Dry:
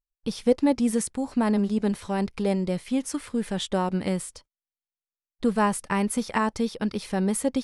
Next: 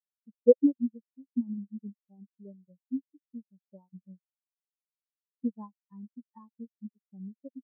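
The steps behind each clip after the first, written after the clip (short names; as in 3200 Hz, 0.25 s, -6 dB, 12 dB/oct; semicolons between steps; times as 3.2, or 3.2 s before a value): transient shaper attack +4 dB, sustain -8 dB; spectral expander 4:1; gain -2 dB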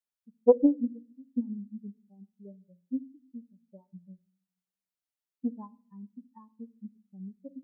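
shoebox room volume 610 m³, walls furnished, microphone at 0.36 m; Doppler distortion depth 0.18 ms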